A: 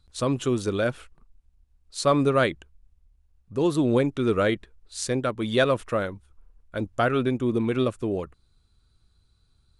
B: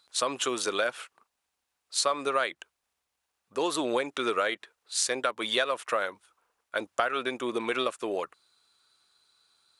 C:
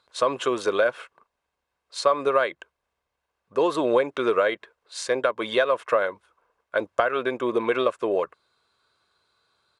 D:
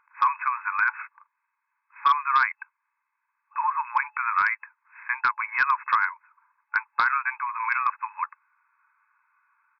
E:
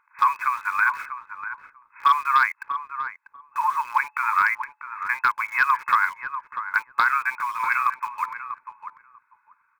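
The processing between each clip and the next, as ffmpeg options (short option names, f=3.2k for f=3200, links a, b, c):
-af "highpass=740,acompressor=threshold=-31dB:ratio=6,volume=7.5dB"
-af "lowpass=f=1.1k:p=1,aecho=1:1:1.9:0.34,volume=7.5dB"
-af "afftfilt=real='re*between(b*sr/4096,860,2600)':imag='im*between(b*sr/4096,860,2600)':win_size=4096:overlap=0.75,aresample=11025,asoftclip=type=hard:threshold=-18.5dB,aresample=44100,volume=5.5dB"
-filter_complex "[0:a]asplit=2[a][b];[b]acrusher=bits=5:mix=0:aa=0.000001,volume=-10dB[c];[a][c]amix=inputs=2:normalize=0,asplit=2[d][e];[e]adelay=643,lowpass=f=820:p=1,volume=-6dB,asplit=2[f][g];[g]adelay=643,lowpass=f=820:p=1,volume=0.2,asplit=2[h][i];[i]adelay=643,lowpass=f=820:p=1,volume=0.2[j];[d][f][h][j]amix=inputs=4:normalize=0"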